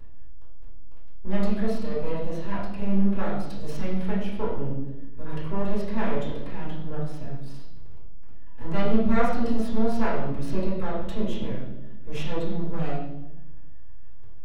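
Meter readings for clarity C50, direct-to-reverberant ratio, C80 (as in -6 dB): 2.0 dB, -11.0 dB, 5.0 dB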